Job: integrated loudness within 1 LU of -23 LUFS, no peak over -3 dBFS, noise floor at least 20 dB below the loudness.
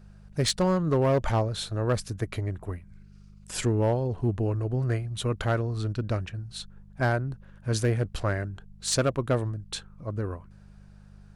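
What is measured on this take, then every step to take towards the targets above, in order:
clipped samples 0.7%; clipping level -17.5 dBFS; hum 50 Hz; highest harmonic 200 Hz; hum level -49 dBFS; loudness -28.5 LUFS; peak level -17.5 dBFS; loudness target -23.0 LUFS
-> clip repair -17.5 dBFS; de-hum 50 Hz, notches 4; trim +5.5 dB

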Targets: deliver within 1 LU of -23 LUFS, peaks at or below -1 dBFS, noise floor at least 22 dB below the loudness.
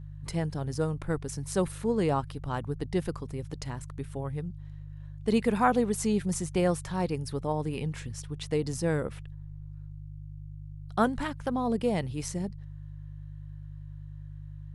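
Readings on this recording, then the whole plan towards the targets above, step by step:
hum 50 Hz; highest harmonic 150 Hz; hum level -40 dBFS; loudness -31.0 LUFS; peak level -11.5 dBFS; loudness target -23.0 LUFS
-> de-hum 50 Hz, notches 3; trim +8 dB

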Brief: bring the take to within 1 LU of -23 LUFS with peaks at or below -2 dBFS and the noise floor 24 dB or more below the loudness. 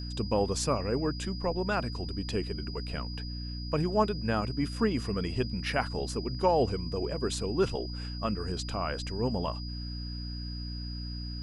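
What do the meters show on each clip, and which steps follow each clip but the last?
hum 60 Hz; highest harmonic 300 Hz; hum level -35 dBFS; steady tone 4.9 kHz; tone level -43 dBFS; loudness -32.0 LUFS; peak level -12.5 dBFS; loudness target -23.0 LUFS
-> de-hum 60 Hz, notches 5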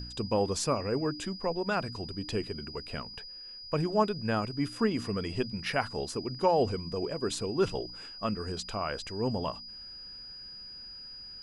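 hum not found; steady tone 4.9 kHz; tone level -43 dBFS
-> band-stop 4.9 kHz, Q 30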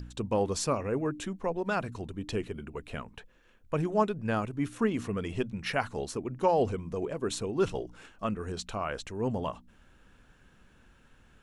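steady tone not found; loudness -32.0 LUFS; peak level -13.0 dBFS; loudness target -23.0 LUFS
-> trim +9 dB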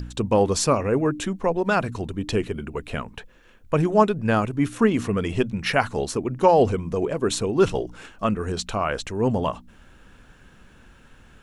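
loudness -23.0 LUFS; peak level -4.0 dBFS; noise floor -52 dBFS

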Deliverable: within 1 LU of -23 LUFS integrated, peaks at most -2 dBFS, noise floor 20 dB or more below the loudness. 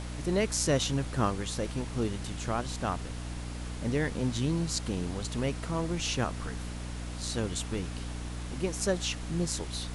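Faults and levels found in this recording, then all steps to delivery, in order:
hum 60 Hz; highest harmonic 300 Hz; hum level -36 dBFS; noise floor -38 dBFS; noise floor target -53 dBFS; loudness -32.5 LUFS; peak level -13.5 dBFS; loudness target -23.0 LUFS
-> hum notches 60/120/180/240/300 Hz; noise print and reduce 15 dB; trim +9.5 dB

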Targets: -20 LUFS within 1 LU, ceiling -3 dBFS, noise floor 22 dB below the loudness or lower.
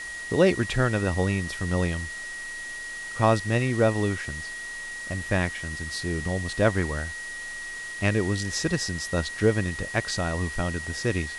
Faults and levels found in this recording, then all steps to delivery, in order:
steady tone 1.9 kHz; tone level -34 dBFS; noise floor -36 dBFS; noise floor target -49 dBFS; loudness -27.0 LUFS; peak level -6.5 dBFS; loudness target -20.0 LUFS
-> band-stop 1.9 kHz, Q 30; noise reduction 13 dB, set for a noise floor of -36 dBFS; trim +7 dB; peak limiter -3 dBFS

